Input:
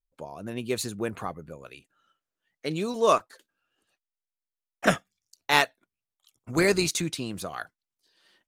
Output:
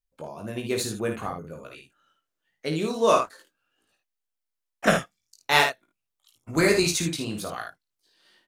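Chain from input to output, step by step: early reflections 19 ms -4.5 dB, 53 ms -6.5 dB, 76 ms -8 dB

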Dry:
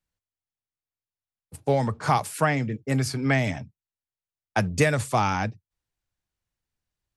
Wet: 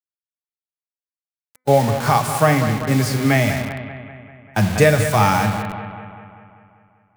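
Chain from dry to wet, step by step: gate -38 dBFS, range -6 dB; on a send at -12.5 dB: reverberation RT60 0.90 s, pre-delay 5 ms; on the sum: bit crusher 6-bit; reverse; upward compressor, threshold -38 dBFS; reverse; peaking EQ 170 Hz -3 dB 1.8 oct; bucket-brigade echo 195 ms, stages 4096, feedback 59%, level -10.5 dB; harmonic-percussive split harmonic +9 dB; de-hum 253.8 Hz, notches 9; trim +1.5 dB

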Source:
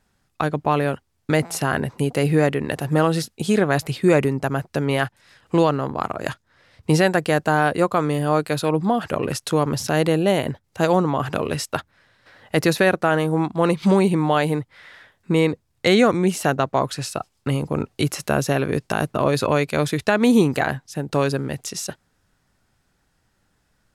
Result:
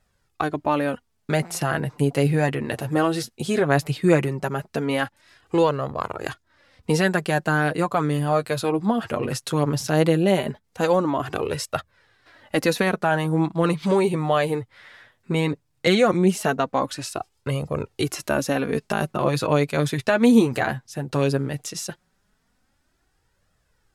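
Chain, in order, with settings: flange 0.17 Hz, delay 1.5 ms, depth 7.8 ms, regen +20%; trim +1.5 dB

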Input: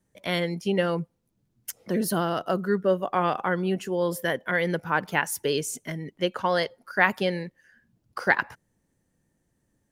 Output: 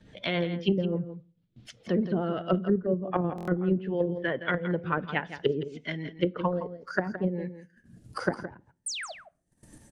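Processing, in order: coarse spectral quantiser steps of 15 dB; in parallel at -2 dB: level held to a coarse grid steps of 24 dB; on the sum: painted sound fall, 8.86–9.12 s, 570–9900 Hz -30 dBFS; upward compressor, threshold -36 dBFS; rotary cabinet horn 7 Hz, later 0.75 Hz, at 1.17 s; gate -56 dBFS, range -16 dB; low-pass that closes with the level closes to 330 Hz, closed at -20 dBFS; on a send at -20 dB: reverberation RT60 0.45 s, pre-delay 6 ms; on the sum: low-pass sweep 3.5 kHz -> 9.7 kHz, 6.23–7.21 s; delay 167 ms -11.5 dB; buffer glitch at 3.36 s, samples 1024, times 4

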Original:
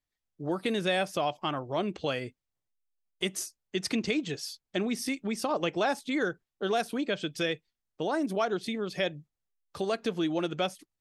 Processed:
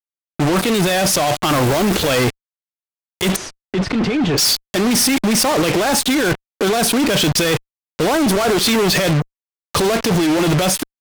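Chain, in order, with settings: 8.16–8.83 s: high-pass 280 Hz 6 dB/octave; compressor with a negative ratio -37 dBFS, ratio -1; 1.49–2.11 s: added noise pink -53 dBFS; fuzz box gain 53 dB, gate -46 dBFS; 3.36–4.38 s: tape spacing loss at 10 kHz 26 dB

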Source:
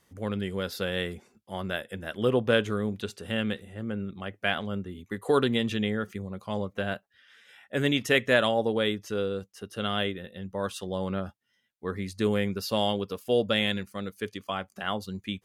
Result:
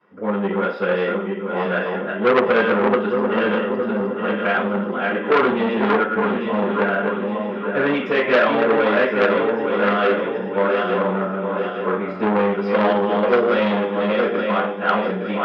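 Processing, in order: backward echo that repeats 433 ms, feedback 69%, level -4.5 dB; high-pass 440 Hz 6 dB/octave; in parallel at -1 dB: peak limiter -18 dBFS, peak gain reduction 10 dB; on the sum: distance through air 360 m; reverberation RT60 0.45 s, pre-delay 3 ms, DRR -12 dB; transformer saturation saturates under 1.5 kHz; trim -12 dB

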